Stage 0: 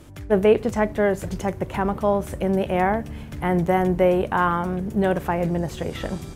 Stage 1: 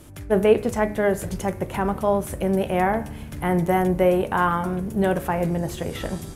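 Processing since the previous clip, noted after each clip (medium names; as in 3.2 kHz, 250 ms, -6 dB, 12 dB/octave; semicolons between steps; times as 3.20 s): peaking EQ 11 kHz +9 dB 0.73 oct; de-hum 69.3 Hz, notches 39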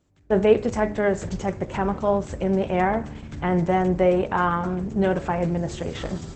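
gate with hold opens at -26 dBFS; Opus 12 kbps 48 kHz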